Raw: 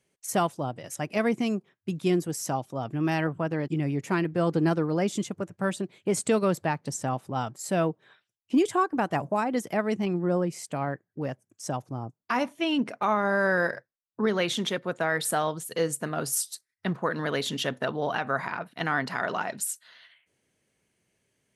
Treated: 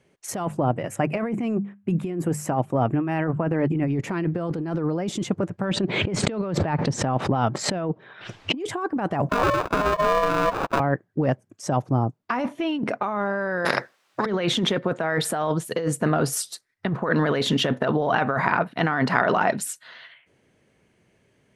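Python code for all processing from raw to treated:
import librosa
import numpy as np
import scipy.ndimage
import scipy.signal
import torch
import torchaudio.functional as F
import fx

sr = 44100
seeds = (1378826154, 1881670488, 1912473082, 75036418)

y = fx.chain(x, sr, fx.band_shelf(hz=4500.0, db=-10.0, octaves=1.1),
    fx.hum_notches(base_hz=50, count=4), at=(0.45, 3.88))
y = fx.chain(y, sr, fx.lowpass(hz=4400.0, slope=12),
    fx.pre_swell(db_per_s=96.0), at=(5.65, 8.6))
y = fx.chain(y, sr, fx.bass_treble(bass_db=0, treble_db=6),
    fx.sample_hold(seeds[0], rate_hz=1200.0, jitter_pct=0),
    fx.ring_mod(carrier_hz=830.0), at=(9.29, 10.8))
y = fx.chain(y, sr, fx.weighting(curve='A'),
    fx.spectral_comp(ratio=4.0), at=(13.65, 14.26))
y = fx.lowpass(y, sr, hz=1800.0, slope=6)
y = fx.over_compress(y, sr, threshold_db=-32.0, ratio=-1.0)
y = y * librosa.db_to_amplitude(9.0)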